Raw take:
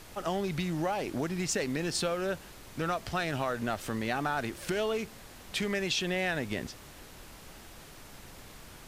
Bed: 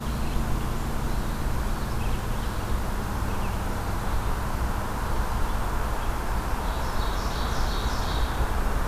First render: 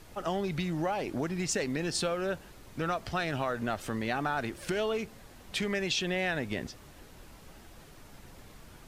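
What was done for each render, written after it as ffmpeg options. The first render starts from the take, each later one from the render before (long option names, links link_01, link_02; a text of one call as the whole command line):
ffmpeg -i in.wav -af "afftdn=noise_reduction=6:noise_floor=-50" out.wav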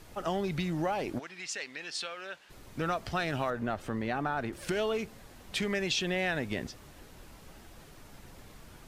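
ffmpeg -i in.wav -filter_complex "[0:a]asplit=3[link_01][link_02][link_03];[link_01]afade=type=out:start_time=1.18:duration=0.02[link_04];[link_02]bandpass=frequency=2800:width_type=q:width=0.83,afade=type=in:start_time=1.18:duration=0.02,afade=type=out:start_time=2.49:duration=0.02[link_05];[link_03]afade=type=in:start_time=2.49:duration=0.02[link_06];[link_04][link_05][link_06]amix=inputs=3:normalize=0,asettb=1/sr,asplit=3[link_07][link_08][link_09];[link_07]atrim=end=3.504[link_10];[link_08]atrim=start=3.5:end=4.53,asetpts=PTS-STARTPTS,afade=type=in:duration=0.004:curve=qsin,afade=type=out:start_time=1.026:duration=0.004:curve=qsin,highshelf=frequency=2900:gain=-10[link_11];[link_09]atrim=start=4.526[link_12];[link_10][link_11]acrossfade=duration=0.004:curve1=hsin:curve2=qsin[link_13];[link_13][link_12]acrossfade=duration=0.004:curve1=qsin:curve2=hsin" out.wav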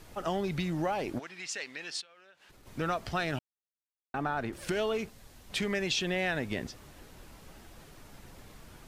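ffmpeg -i in.wav -filter_complex "[0:a]asplit=3[link_01][link_02][link_03];[link_01]afade=type=out:start_time=2:duration=0.02[link_04];[link_02]acompressor=threshold=-53dB:ratio=16:attack=3.2:release=140:knee=1:detection=peak,afade=type=in:start_time=2:duration=0.02,afade=type=out:start_time=2.65:duration=0.02[link_05];[link_03]afade=type=in:start_time=2.65:duration=0.02[link_06];[link_04][link_05][link_06]amix=inputs=3:normalize=0,asettb=1/sr,asplit=3[link_07][link_08][link_09];[link_07]atrim=end=5.094[link_10];[link_08]atrim=start=5.09:end=5.5,asetpts=PTS-STARTPTS,afade=type=in:duration=0.004:curve=qsin,afade=type=out:start_time=0.406:duration=0.004:curve=qsin,acrossover=split=120|3000[link_11][link_12][link_13];[link_12]acompressor=threshold=-57dB:ratio=6:attack=3.2:release=140:knee=2.83:detection=peak[link_14];[link_11][link_14][link_13]amix=inputs=3:normalize=0[link_15];[link_09]atrim=start=5.496[link_16];[link_10][link_15]acrossfade=duration=0.004:curve1=hsin:curve2=qsin[link_17];[link_17][link_16]acrossfade=duration=0.004:curve1=qsin:curve2=hsin,asplit=3[link_18][link_19][link_20];[link_18]atrim=end=3.39,asetpts=PTS-STARTPTS,afade=type=out:start_time=3.386:duration=0.004:curve=hsin[link_21];[link_19]atrim=start=3.39:end=4.14,asetpts=PTS-STARTPTS,volume=0[link_22];[link_20]atrim=start=4.14,asetpts=PTS-STARTPTS,afade=type=in:duration=0.004:curve=hsin[link_23];[link_21][link_22][link_23]concat=n=3:v=0:a=1" out.wav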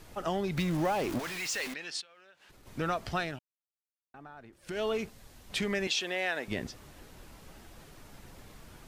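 ffmpeg -i in.wav -filter_complex "[0:a]asettb=1/sr,asplit=3[link_01][link_02][link_03];[link_01]atrim=end=0.574[link_04];[link_02]atrim=start=0.57:end=1.74,asetpts=PTS-STARTPTS,afade=type=in:duration=0.004:curve=qsin,afade=type=out:start_time=1.166:duration=0.004:curve=qsin,aeval=exprs='val(0)+0.5*0.0178*sgn(val(0))':channel_layout=same[link_05];[link_03]atrim=start=1.736[link_06];[link_04][link_05]acrossfade=duration=0.004:curve1=hsin:curve2=qsin[link_07];[link_07][link_06]acrossfade=duration=0.004:curve1=qsin:curve2=hsin,asettb=1/sr,asplit=3[link_08][link_09][link_10];[link_08]atrim=end=5.874[link_11];[link_09]atrim=start=5.87:end=6.48,asetpts=PTS-STARTPTS,afade=type=in:duration=0.004:curve=qsin,afade=type=out:start_time=0.606:duration=0.004:curve=qsin,highpass=420[link_12];[link_10]atrim=start=6.476[link_13];[link_11][link_12]acrossfade=duration=0.004:curve1=hsin:curve2=qsin[link_14];[link_14][link_13]acrossfade=duration=0.004:curve1=qsin:curve2=hsin,asplit=3[link_15][link_16][link_17];[link_15]atrim=end=3.42,asetpts=PTS-STARTPTS,afade=type=out:start_time=3.18:duration=0.24:silence=0.141254[link_18];[link_16]atrim=start=3.42:end=4.63,asetpts=PTS-STARTPTS,volume=-17dB[link_19];[link_17]atrim=start=4.63,asetpts=PTS-STARTPTS,afade=type=in:duration=0.24:silence=0.141254[link_20];[link_18][link_19][link_20]concat=n=3:v=0:a=1" out.wav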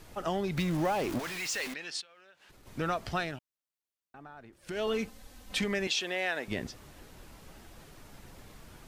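ffmpeg -i in.wav -filter_complex "[0:a]asettb=1/sr,asplit=3[link_01][link_02][link_03];[link_01]atrim=end=4.874[link_04];[link_02]atrim=start=4.87:end=5.64,asetpts=PTS-STARTPTS,afade=type=in:duration=0.004:curve=qsin,afade=type=out:start_time=0.766:duration=0.004:curve=qsin,aecho=1:1:3.9:0.65,atrim=end_sample=33957[link_05];[link_03]atrim=start=5.636[link_06];[link_04][link_05]acrossfade=duration=0.004:curve1=hsin:curve2=qsin[link_07];[link_07][link_06]acrossfade=duration=0.004:curve1=qsin:curve2=hsin" out.wav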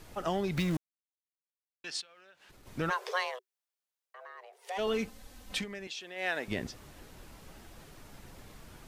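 ffmpeg -i in.wav -filter_complex "[0:a]asplit=3[link_01][link_02][link_03];[link_01]afade=type=out:start_time=2.89:duration=0.02[link_04];[link_02]afreqshift=370,afade=type=in:start_time=2.89:duration=0.02,afade=type=out:start_time=4.77:duration=0.02[link_05];[link_03]afade=type=in:start_time=4.77:duration=0.02[link_06];[link_04][link_05][link_06]amix=inputs=3:normalize=0,asplit=5[link_07][link_08][link_09][link_10][link_11];[link_07]atrim=end=0.77,asetpts=PTS-STARTPTS,afade=type=out:start_time=0.766:duration=0.004:curve=hsin[link_12];[link_08]atrim=start=0.77:end=1.84,asetpts=PTS-STARTPTS,volume=0[link_13];[link_09]atrim=start=1.84:end=5.66,asetpts=PTS-STARTPTS,afade=type=in:duration=0.004:curve=hsin,afade=type=out:start_time=3.69:duration=0.13:silence=0.281838[link_14];[link_10]atrim=start=5.66:end=6.15,asetpts=PTS-STARTPTS,volume=-11dB[link_15];[link_11]atrim=start=6.15,asetpts=PTS-STARTPTS,afade=type=in:duration=0.13:silence=0.281838[link_16];[link_12][link_13][link_14][link_15][link_16]concat=n=5:v=0:a=1" out.wav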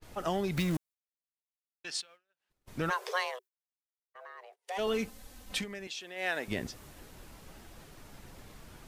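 ffmpeg -i in.wav -af "agate=range=-27dB:threshold=-53dB:ratio=16:detection=peak,adynamicequalizer=threshold=0.00178:dfrequency=7100:dqfactor=0.7:tfrequency=7100:tqfactor=0.7:attack=5:release=100:ratio=0.375:range=2.5:mode=boostabove:tftype=highshelf" out.wav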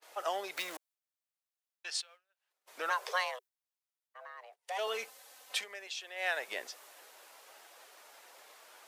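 ffmpeg -i in.wav -af "highpass=frequency=530:width=0.5412,highpass=frequency=530:width=1.3066" out.wav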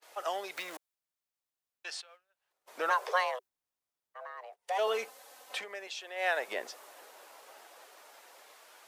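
ffmpeg -i in.wav -filter_complex "[0:a]acrossover=split=1300|2700[link_01][link_02][link_03];[link_01]dynaudnorm=framelen=690:gausssize=5:maxgain=6.5dB[link_04];[link_03]alimiter=level_in=9dB:limit=-24dB:level=0:latency=1:release=201,volume=-9dB[link_05];[link_04][link_02][link_05]amix=inputs=3:normalize=0" out.wav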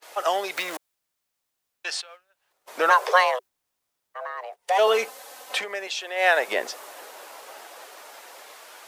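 ffmpeg -i in.wav -af "volume=11dB" out.wav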